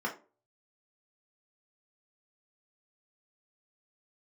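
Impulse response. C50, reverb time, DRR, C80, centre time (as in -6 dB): 12.0 dB, 0.35 s, -3.0 dB, 18.0 dB, 15 ms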